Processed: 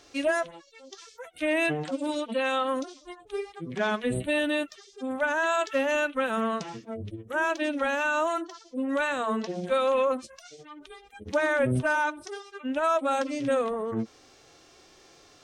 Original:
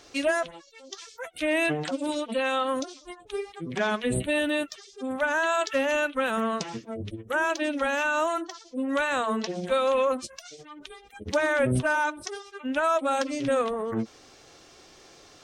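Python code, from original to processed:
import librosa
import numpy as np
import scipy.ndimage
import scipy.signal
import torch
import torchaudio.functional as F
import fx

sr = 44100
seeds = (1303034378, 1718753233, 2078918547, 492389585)

y = fx.hpss(x, sr, part='harmonic', gain_db=8)
y = F.gain(torch.from_numpy(y), -8.5).numpy()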